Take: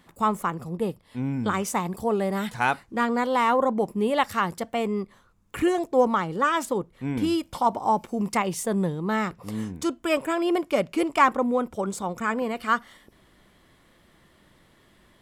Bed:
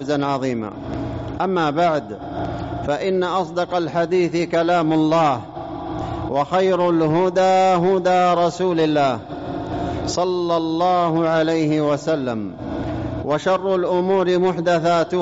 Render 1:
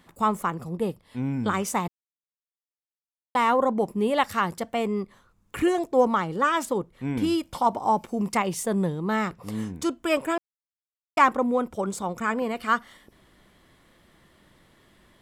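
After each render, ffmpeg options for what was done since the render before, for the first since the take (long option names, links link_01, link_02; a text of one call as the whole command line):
ffmpeg -i in.wav -filter_complex "[0:a]asplit=5[link_01][link_02][link_03][link_04][link_05];[link_01]atrim=end=1.88,asetpts=PTS-STARTPTS,afade=type=out:start_time=1.876:duration=0.004:curve=hsin[link_06];[link_02]atrim=start=1.88:end=3.35,asetpts=PTS-STARTPTS,volume=0[link_07];[link_03]atrim=start=3.35:end=10.38,asetpts=PTS-STARTPTS,afade=type=in:duration=0.004:curve=hsin,afade=type=out:start_time=7.026:duration=0.004:curve=hsin[link_08];[link_04]atrim=start=10.38:end=11.17,asetpts=PTS-STARTPTS,volume=0[link_09];[link_05]atrim=start=11.17,asetpts=PTS-STARTPTS,afade=type=in:duration=0.004:curve=hsin[link_10];[link_06][link_07][link_08][link_09][link_10]concat=n=5:v=0:a=1" out.wav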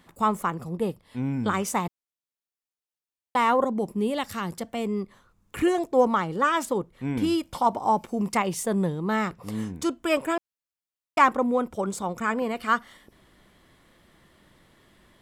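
ffmpeg -i in.wav -filter_complex "[0:a]asettb=1/sr,asplit=3[link_01][link_02][link_03];[link_01]atrim=end=3.644[link_04];[link_02]atrim=start=3.64:end=5.57,asetpts=PTS-STARTPTS,afade=type=in:duration=0.004:curve=qsin,afade=type=out:start_time=1.926:duration=0.004:curve=qsin,acrossover=split=420|3000[link_05][link_06][link_07];[link_06]acompressor=threshold=-45dB:ratio=1.5:attack=3.2:release=140:knee=2.83:detection=peak[link_08];[link_05][link_08][link_07]amix=inputs=3:normalize=0[link_09];[link_03]atrim=start=5.566[link_10];[link_04][link_09]acrossfade=duration=0.004:curve1=hsin:curve2=qsin[link_11];[link_11][link_10]acrossfade=duration=0.004:curve1=qsin:curve2=hsin" out.wav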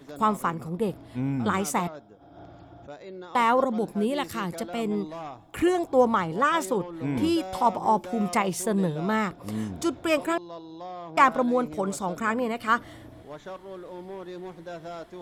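ffmpeg -i in.wav -i bed.wav -filter_complex "[1:a]volume=-21.5dB[link_01];[0:a][link_01]amix=inputs=2:normalize=0" out.wav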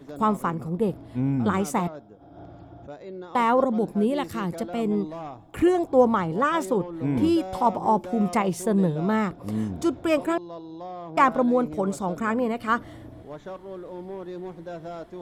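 ffmpeg -i in.wav -af "tiltshelf=frequency=970:gain=4" out.wav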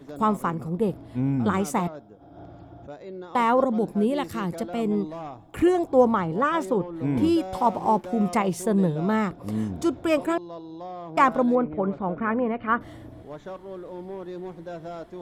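ffmpeg -i in.wav -filter_complex "[0:a]asettb=1/sr,asplit=3[link_01][link_02][link_03];[link_01]atrim=end=6.114[link_04];[link_02]atrim=start=6.11:end=6.96,asetpts=PTS-STARTPTS,afade=type=in:duration=0.004:curve=qsin,afade=type=out:start_time=0.846:duration=0.004:curve=qsin,highshelf=frequency=4700:gain=-7[link_05];[link_03]atrim=start=6.956[link_06];[link_04][link_05]acrossfade=duration=0.004:curve1=hsin:curve2=qsin[link_07];[link_07][link_06]acrossfade=duration=0.004:curve1=qsin:curve2=hsin,asettb=1/sr,asplit=3[link_08][link_09][link_10];[link_08]atrim=end=7.584[link_11];[link_09]atrim=start=7.58:end=8.06,asetpts=PTS-STARTPTS,afade=type=in:duration=0.004:curve=qsin,afade=type=out:start_time=0.476:duration=0.004:curve=qsin,aeval=exprs='sgn(val(0))*max(abs(val(0))-0.00335,0)':channel_layout=same[link_12];[link_10]atrim=start=8.056[link_13];[link_11][link_12]acrossfade=duration=0.004:curve1=hsin:curve2=qsin[link_14];[link_14][link_13]acrossfade=duration=0.004:curve1=qsin:curve2=hsin,asettb=1/sr,asplit=3[link_15][link_16][link_17];[link_15]atrim=end=11.554[link_18];[link_16]atrim=start=11.55:end=12.81,asetpts=PTS-STARTPTS,afade=type=in:duration=0.004:curve=qsin,afade=type=out:start_time=1.256:duration=0.004:curve=qsin,lowpass=frequency=2500:width=0.5412,lowpass=frequency=2500:width=1.3066[link_19];[link_17]atrim=start=12.806[link_20];[link_18][link_19]acrossfade=duration=0.004:curve1=hsin:curve2=qsin[link_21];[link_21][link_20]acrossfade=duration=0.004:curve1=qsin:curve2=hsin" out.wav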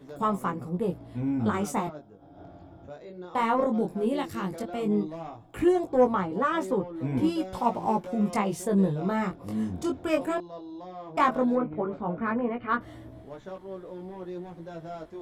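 ffmpeg -i in.wav -af "asoftclip=type=tanh:threshold=-9dB,flanger=delay=15.5:depth=7.1:speed=0.15" out.wav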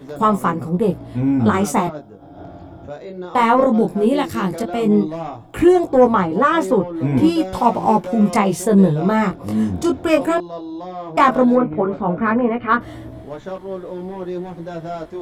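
ffmpeg -i in.wav -af "volume=11dB,alimiter=limit=-3dB:level=0:latency=1" out.wav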